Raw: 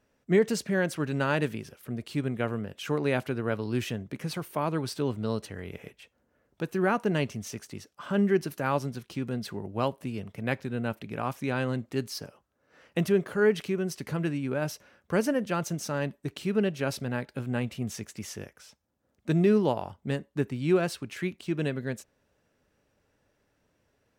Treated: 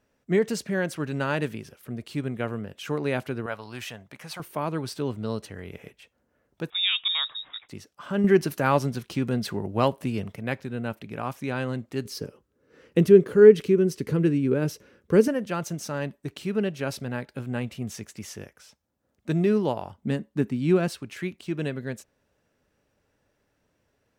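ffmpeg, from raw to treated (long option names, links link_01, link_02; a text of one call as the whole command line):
ffmpeg -i in.wav -filter_complex "[0:a]asettb=1/sr,asplit=3[link_01][link_02][link_03];[link_01]atrim=end=3.464[link_04];[link_02]atrim=start=3.46:end=4.4,asetpts=PTS-STARTPTS,afade=type=in:duration=0.004:curve=qsin,afade=type=out:start_time=0.936:duration=0.004:curve=qsin,lowshelf=frequency=520:width_type=q:width=1.5:gain=-10[link_05];[link_03]atrim=start=4.396[link_06];[link_04][link_05]acrossfade=duration=0.004:curve1=hsin:curve2=qsin[link_07];[link_07][link_06]acrossfade=duration=0.004:curve1=qsin:curve2=hsin,asettb=1/sr,asplit=3[link_08][link_09][link_10];[link_08]atrim=end=6.704[link_11];[link_09]atrim=start=6.7:end=7.69,asetpts=PTS-STARTPTS,afade=type=in:duration=0.004:curve=qsin,afade=type=out:start_time=0.986:duration=0.004:curve=qsin,lowpass=frequency=3300:width_type=q:width=0.5098,lowpass=frequency=3300:width_type=q:width=0.6013,lowpass=frequency=3300:width_type=q:width=0.9,lowpass=frequency=3300:width_type=q:width=2.563,afreqshift=-3900[link_12];[link_10]atrim=start=7.686[link_13];[link_11][link_12]acrossfade=duration=0.004:curve1=hsin:curve2=qsin[link_14];[link_14][link_13]acrossfade=duration=0.004:curve1=qsin:curve2=hsin,asettb=1/sr,asplit=3[link_15][link_16][link_17];[link_15]atrim=end=8.244[link_18];[link_16]atrim=start=8.24:end=10.36,asetpts=PTS-STARTPTS,afade=type=in:duration=0.004:curve=qsin,afade=type=out:start_time=2.116:duration=0.004:curve=qsin,acontrast=54[link_19];[link_17]atrim=start=10.356[link_20];[link_18][link_19]acrossfade=duration=0.004:curve1=hsin:curve2=qsin[link_21];[link_21][link_20]acrossfade=duration=0.004:curve1=qsin:curve2=hsin,asettb=1/sr,asplit=3[link_22][link_23][link_24];[link_22]atrim=end=12.054[link_25];[link_23]atrim=start=12.05:end=15.28,asetpts=PTS-STARTPTS,afade=type=in:duration=0.004:curve=qsin,afade=type=out:start_time=3.226:duration=0.004:curve=qsin,lowshelf=frequency=550:width_type=q:width=3:gain=6[link_26];[link_24]atrim=start=15.276[link_27];[link_25][link_26]acrossfade=duration=0.004:curve1=hsin:curve2=qsin[link_28];[link_28][link_27]acrossfade=duration=0.004:curve1=qsin:curve2=hsin,asettb=1/sr,asplit=3[link_29][link_30][link_31];[link_29]atrim=end=19.984[link_32];[link_30]atrim=start=19.98:end=20.88,asetpts=PTS-STARTPTS,afade=type=in:duration=0.004:curve=qsin,afade=type=out:start_time=0.896:duration=0.004:curve=qsin,equalizer=frequency=220:width_type=o:width=0.77:gain=9.5[link_33];[link_31]atrim=start=20.876[link_34];[link_32][link_33]acrossfade=duration=0.004:curve1=hsin:curve2=qsin[link_35];[link_35][link_34]acrossfade=duration=0.004:curve1=qsin:curve2=hsin" out.wav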